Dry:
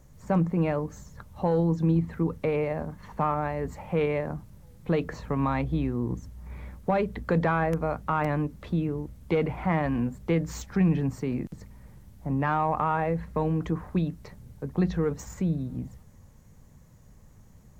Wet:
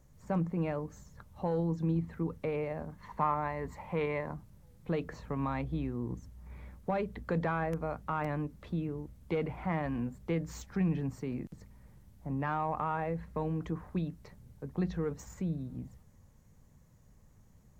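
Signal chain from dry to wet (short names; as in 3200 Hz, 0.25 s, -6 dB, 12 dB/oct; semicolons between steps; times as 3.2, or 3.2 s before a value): 3.01–4.35 thirty-one-band EQ 1000 Hz +10 dB, 2000 Hz +7 dB, 4000 Hz +4 dB; gain -7.5 dB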